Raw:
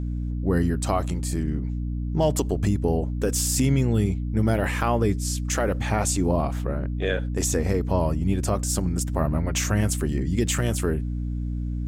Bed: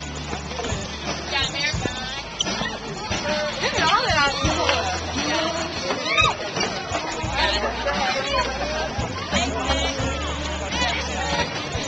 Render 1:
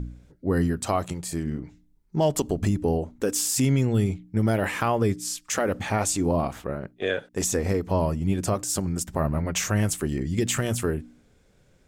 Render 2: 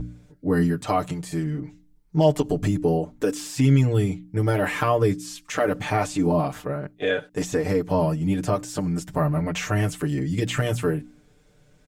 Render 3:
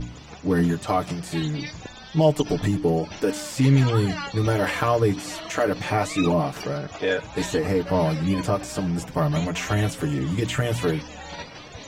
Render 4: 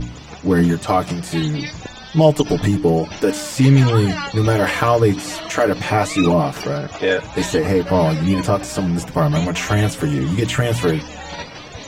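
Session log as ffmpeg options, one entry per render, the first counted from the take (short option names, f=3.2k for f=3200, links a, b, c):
-af "bandreject=f=60:t=h:w=4,bandreject=f=120:t=h:w=4,bandreject=f=180:t=h:w=4,bandreject=f=240:t=h:w=4,bandreject=f=300:t=h:w=4"
-filter_complex "[0:a]acrossover=split=3900[a][b];[b]acompressor=threshold=-41dB:ratio=4:attack=1:release=60[c];[a][c]amix=inputs=2:normalize=0,aecho=1:1:6.7:0.89"
-filter_complex "[1:a]volume=-13.5dB[a];[0:a][a]amix=inputs=2:normalize=0"
-af "volume=6dB,alimiter=limit=-2dB:level=0:latency=1"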